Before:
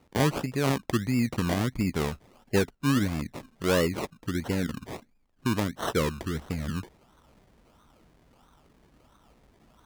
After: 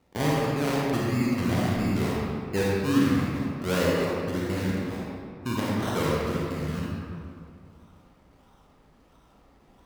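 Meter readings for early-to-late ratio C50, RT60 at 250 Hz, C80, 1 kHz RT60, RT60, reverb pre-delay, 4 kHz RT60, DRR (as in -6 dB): -3.5 dB, 2.4 s, -1.5 dB, 2.3 s, 2.3 s, 31 ms, 1.3 s, -6.0 dB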